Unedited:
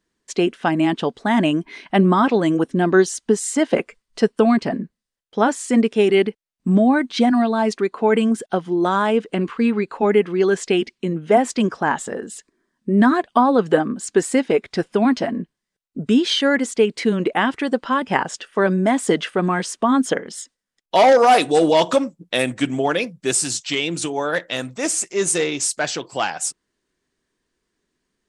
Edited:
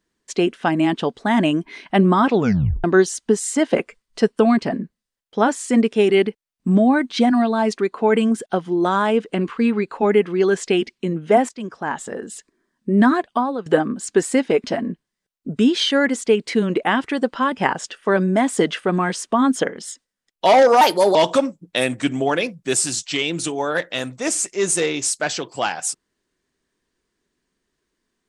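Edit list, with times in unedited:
2.34 tape stop 0.50 s
11.49–12.32 fade in, from -17.5 dB
13.11–13.66 fade out, to -15.5 dB
14.64–15.14 cut
21.31–21.73 speed 123%

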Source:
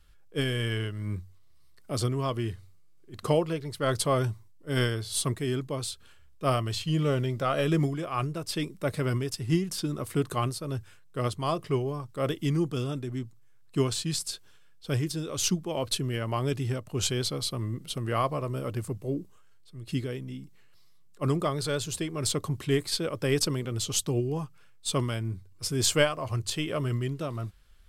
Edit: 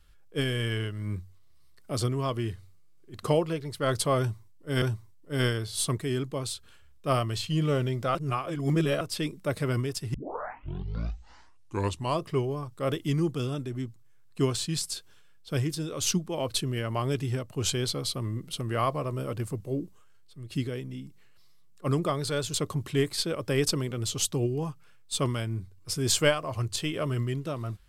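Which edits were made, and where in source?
4.19–4.82 loop, 2 plays
7.52–8.38 reverse
9.51 tape start 2.08 s
21.91–22.28 cut

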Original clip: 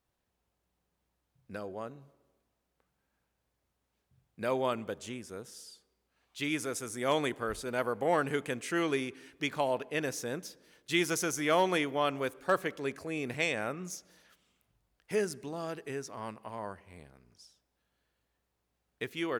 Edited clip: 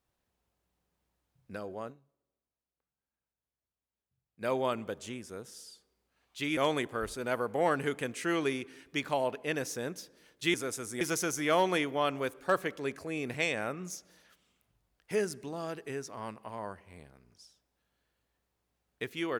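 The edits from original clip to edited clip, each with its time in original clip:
1.9–4.45 dip -15.5 dB, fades 0.43 s exponential
6.57–7.04 move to 11.01

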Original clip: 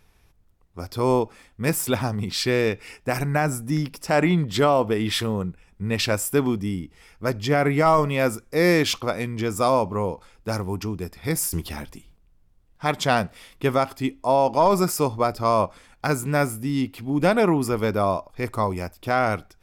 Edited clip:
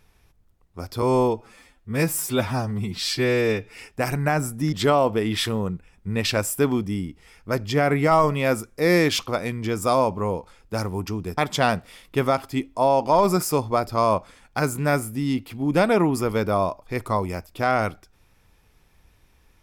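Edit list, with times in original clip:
1.02–2.85 stretch 1.5×
3.81–4.47 cut
11.12–12.85 cut

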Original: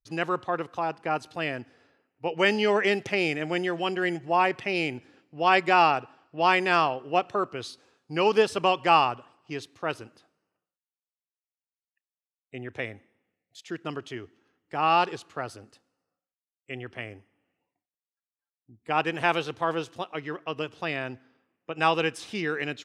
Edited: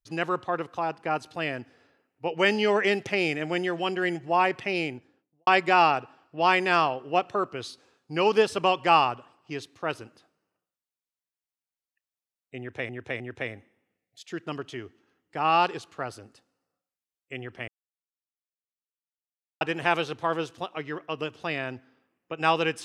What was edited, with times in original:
4.68–5.47 studio fade out
12.58–12.89 loop, 3 plays
17.06–18.99 mute

